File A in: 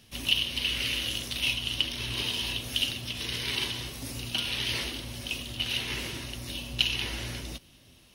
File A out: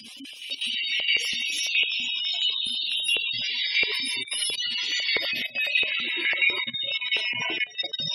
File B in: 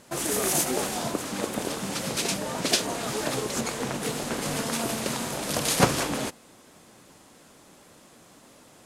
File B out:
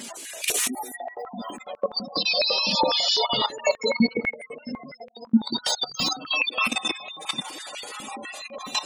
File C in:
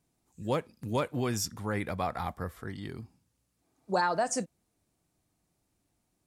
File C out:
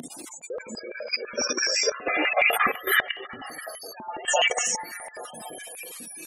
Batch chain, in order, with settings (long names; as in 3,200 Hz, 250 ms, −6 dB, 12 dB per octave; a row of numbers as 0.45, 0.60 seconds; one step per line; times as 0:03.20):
sign of each sample alone
noise reduction from a noise print of the clip's start 17 dB
high-shelf EQ 7,100 Hz +2.5 dB
on a send: echo through a band-pass that steps 247 ms, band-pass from 2,600 Hz, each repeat −0.7 octaves, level −2 dB
on the sum: reverb whose tail is shaped and stops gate 420 ms rising, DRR −5 dB
in parallel at −11 dB: floating-point word with a short mantissa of 2 bits
on the sum: upward compression, threshold −41 dBFS
gate on every frequency bin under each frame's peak −15 dB strong
flat-topped bell 4,900 Hz +13.5 dB 2.7 octaves
output level in coarse steps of 15 dB
tape wow and flutter 18 cents
high-pass on a step sequencer 12 Hz 230–2,300 Hz
loudness normalisation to −24 LKFS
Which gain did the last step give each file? +1.0, +5.5, +4.0 decibels